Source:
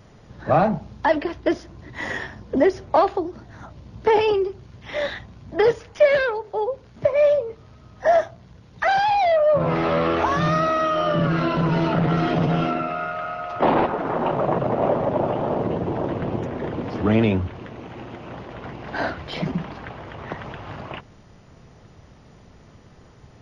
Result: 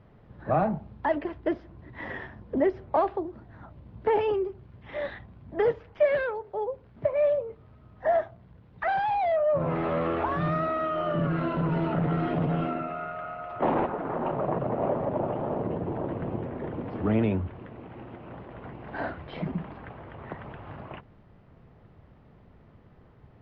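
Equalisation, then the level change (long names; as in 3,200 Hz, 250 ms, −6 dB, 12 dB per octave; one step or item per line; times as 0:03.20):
high-frequency loss of the air 420 metres
−5.5 dB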